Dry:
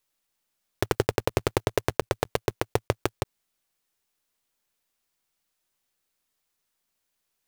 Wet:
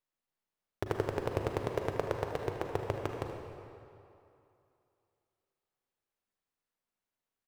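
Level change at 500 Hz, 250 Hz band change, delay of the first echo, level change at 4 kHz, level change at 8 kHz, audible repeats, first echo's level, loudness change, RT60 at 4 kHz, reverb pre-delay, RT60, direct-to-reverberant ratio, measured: -6.0 dB, -6.5 dB, 77 ms, -13.5 dB, -17.0 dB, 1, -12.0 dB, -7.0 dB, 2.0 s, 36 ms, 2.8 s, 2.5 dB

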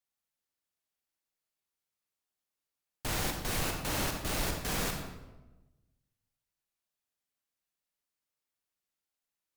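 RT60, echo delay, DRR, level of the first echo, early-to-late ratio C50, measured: 1.1 s, none, 2.5 dB, none, 4.0 dB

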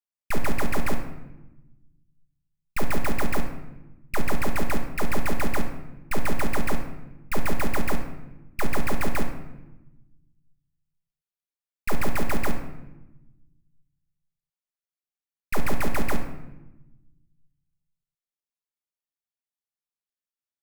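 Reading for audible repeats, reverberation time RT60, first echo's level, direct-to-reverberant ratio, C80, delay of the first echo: none, 1.0 s, none, 3.5 dB, 10.5 dB, none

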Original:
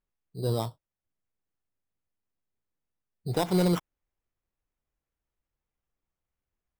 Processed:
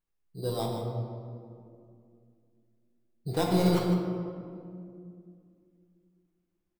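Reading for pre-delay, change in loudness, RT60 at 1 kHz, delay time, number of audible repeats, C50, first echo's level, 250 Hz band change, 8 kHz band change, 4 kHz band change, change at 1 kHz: 6 ms, -1.5 dB, 2.1 s, 0.154 s, 1, 1.5 dB, -9.5 dB, +2.0 dB, -1.5 dB, 0.0 dB, +1.5 dB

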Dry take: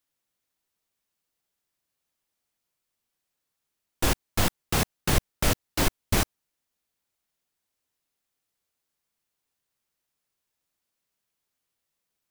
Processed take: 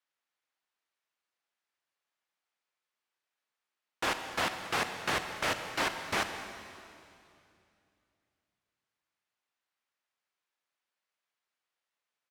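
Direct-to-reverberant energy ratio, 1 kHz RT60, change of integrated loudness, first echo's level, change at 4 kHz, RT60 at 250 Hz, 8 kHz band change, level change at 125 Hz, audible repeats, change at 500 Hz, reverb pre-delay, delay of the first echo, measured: 7.0 dB, 2.5 s, -5.5 dB, -18.5 dB, -4.0 dB, 3.0 s, -10.5 dB, -18.0 dB, 1, -5.0 dB, 28 ms, 0.21 s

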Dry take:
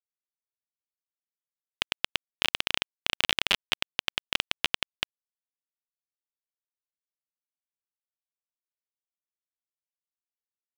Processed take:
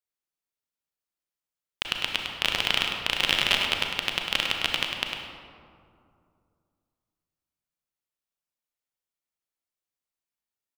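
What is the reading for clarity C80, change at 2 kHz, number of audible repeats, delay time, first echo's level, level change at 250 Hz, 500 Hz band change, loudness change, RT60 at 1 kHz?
2.0 dB, +3.5 dB, 1, 0.102 s, -6.5 dB, +4.5 dB, +4.5 dB, +3.5 dB, 2.4 s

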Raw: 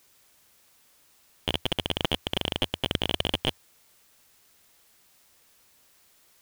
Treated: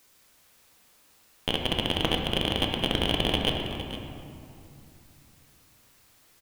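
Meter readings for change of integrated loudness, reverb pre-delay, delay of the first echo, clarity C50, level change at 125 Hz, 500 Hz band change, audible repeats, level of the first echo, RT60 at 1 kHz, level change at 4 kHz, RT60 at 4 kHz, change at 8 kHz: +1.5 dB, 3 ms, 0.459 s, 2.5 dB, +3.5 dB, +3.0 dB, 1, -12.5 dB, 2.7 s, +1.5 dB, 1.4 s, +0.5 dB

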